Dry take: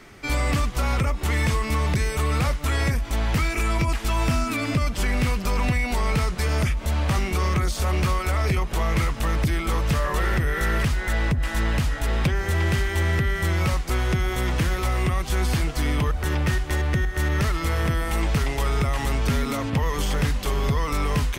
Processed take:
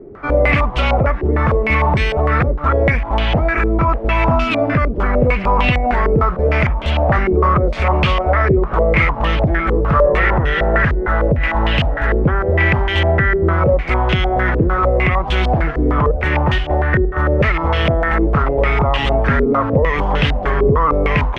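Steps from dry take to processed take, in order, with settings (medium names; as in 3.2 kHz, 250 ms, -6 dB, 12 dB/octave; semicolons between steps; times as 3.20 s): peaking EQ 600 Hz +4.5 dB 0.8 oct; step-sequenced low-pass 6.6 Hz 400–3000 Hz; trim +6 dB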